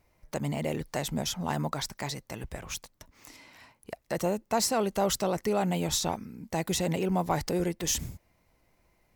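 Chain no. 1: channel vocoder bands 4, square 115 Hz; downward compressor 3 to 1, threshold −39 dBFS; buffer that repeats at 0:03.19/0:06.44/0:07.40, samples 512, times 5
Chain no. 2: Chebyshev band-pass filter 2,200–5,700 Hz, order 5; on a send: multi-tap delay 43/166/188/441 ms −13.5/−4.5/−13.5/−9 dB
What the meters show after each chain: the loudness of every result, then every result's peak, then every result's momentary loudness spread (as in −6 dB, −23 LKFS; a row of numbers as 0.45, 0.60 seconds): −41.5, −38.0 LKFS; −29.0, −19.5 dBFS; 13, 17 LU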